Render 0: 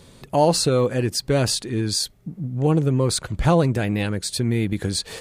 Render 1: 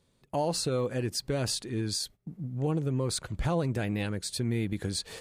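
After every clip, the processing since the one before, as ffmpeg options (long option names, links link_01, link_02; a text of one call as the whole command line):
ffmpeg -i in.wav -af "agate=range=-14dB:threshold=-37dB:ratio=16:detection=peak,alimiter=limit=-12dB:level=0:latency=1:release=141,volume=-8dB" out.wav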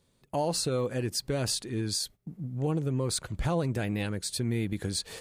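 ffmpeg -i in.wav -af "highshelf=frequency=8000:gain=4" out.wav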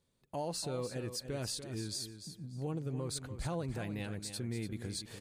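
ffmpeg -i in.wav -af "aecho=1:1:292|584|876:0.316|0.0696|0.0153,volume=-9dB" out.wav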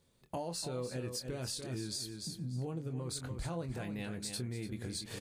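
ffmpeg -i in.wav -filter_complex "[0:a]acompressor=threshold=-43dB:ratio=6,asplit=2[link_01][link_02];[link_02]adelay=24,volume=-8.5dB[link_03];[link_01][link_03]amix=inputs=2:normalize=0,volume=6dB" out.wav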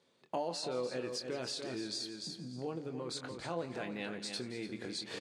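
ffmpeg -i in.wav -af "highpass=290,lowpass=5000,aecho=1:1:171|342|513|684:0.15|0.0733|0.0359|0.0176,volume=4dB" out.wav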